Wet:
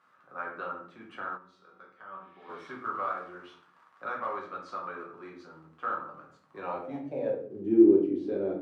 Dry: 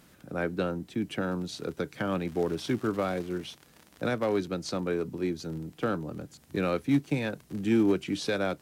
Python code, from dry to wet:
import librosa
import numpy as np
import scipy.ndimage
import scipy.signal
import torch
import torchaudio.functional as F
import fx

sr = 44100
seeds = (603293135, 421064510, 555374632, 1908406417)

y = fx.room_shoebox(x, sr, seeds[0], volume_m3=62.0, walls='mixed', distance_m=0.98)
y = fx.filter_sweep_bandpass(y, sr, from_hz=1200.0, to_hz=350.0, start_s=6.42, end_s=7.7, q=5.0)
y = fx.comb_fb(y, sr, f0_hz=190.0, decay_s=0.56, harmonics='all', damping=0.0, mix_pct=80, at=(1.36, 2.48), fade=0.02)
y = fx.spec_repair(y, sr, seeds[1], start_s=2.24, length_s=0.41, low_hz=1700.0, high_hz=5200.0, source='both')
y = y * librosa.db_to_amplitude(3.5)